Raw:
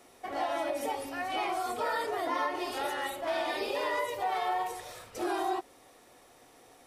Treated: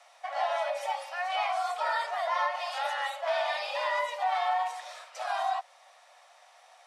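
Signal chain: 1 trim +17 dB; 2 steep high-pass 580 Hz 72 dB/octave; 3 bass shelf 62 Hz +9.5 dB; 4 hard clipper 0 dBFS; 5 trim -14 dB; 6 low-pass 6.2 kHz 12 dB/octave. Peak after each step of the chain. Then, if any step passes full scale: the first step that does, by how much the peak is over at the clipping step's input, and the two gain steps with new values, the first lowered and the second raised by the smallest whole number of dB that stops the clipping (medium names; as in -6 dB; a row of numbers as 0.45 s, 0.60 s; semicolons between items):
-2.0 dBFS, -3.0 dBFS, -3.0 dBFS, -3.0 dBFS, -17.0 dBFS, -17.0 dBFS; nothing clips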